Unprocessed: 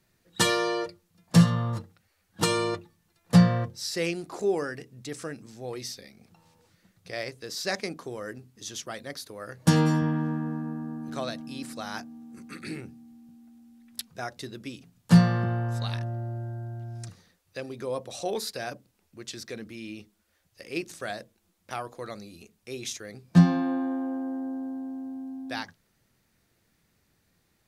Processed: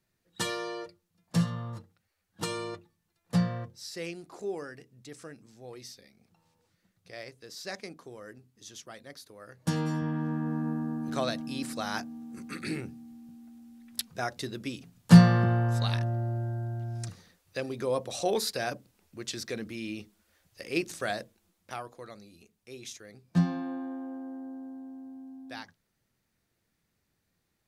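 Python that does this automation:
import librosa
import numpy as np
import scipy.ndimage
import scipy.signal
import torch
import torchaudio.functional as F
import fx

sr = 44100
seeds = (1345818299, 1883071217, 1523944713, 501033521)

y = fx.gain(x, sr, db=fx.line((9.79, -9.0), (10.68, 2.5), (21.19, 2.5), (22.1, -8.0)))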